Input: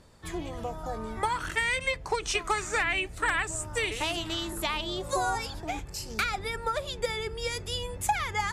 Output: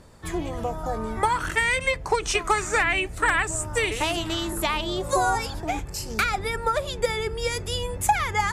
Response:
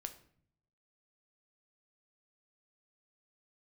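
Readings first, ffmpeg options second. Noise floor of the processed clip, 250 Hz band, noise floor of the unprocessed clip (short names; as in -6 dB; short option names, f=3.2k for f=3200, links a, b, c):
-36 dBFS, +6.5 dB, -42 dBFS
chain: -af "equalizer=f=3.8k:w=0.92:g=-4,volume=6.5dB"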